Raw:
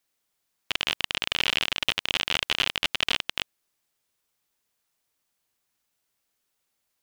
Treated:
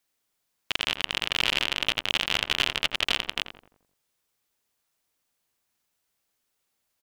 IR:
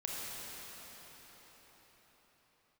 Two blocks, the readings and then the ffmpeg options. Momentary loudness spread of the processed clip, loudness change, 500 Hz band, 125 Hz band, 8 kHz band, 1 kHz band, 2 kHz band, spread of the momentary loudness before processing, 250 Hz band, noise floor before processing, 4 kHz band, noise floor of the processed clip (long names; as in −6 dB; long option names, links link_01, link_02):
7 LU, 0.0 dB, +1.0 dB, +1.0 dB, 0.0 dB, +0.5 dB, 0.0 dB, 7 LU, +1.0 dB, −78 dBFS, 0.0 dB, −78 dBFS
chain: -filter_complex "[0:a]asplit=2[link_01][link_02];[link_02]adelay=86,lowpass=frequency=1300:poles=1,volume=-7dB,asplit=2[link_03][link_04];[link_04]adelay=86,lowpass=frequency=1300:poles=1,volume=0.52,asplit=2[link_05][link_06];[link_06]adelay=86,lowpass=frequency=1300:poles=1,volume=0.52,asplit=2[link_07][link_08];[link_08]adelay=86,lowpass=frequency=1300:poles=1,volume=0.52,asplit=2[link_09][link_10];[link_10]adelay=86,lowpass=frequency=1300:poles=1,volume=0.52,asplit=2[link_11][link_12];[link_12]adelay=86,lowpass=frequency=1300:poles=1,volume=0.52[link_13];[link_01][link_03][link_05][link_07][link_09][link_11][link_13]amix=inputs=7:normalize=0"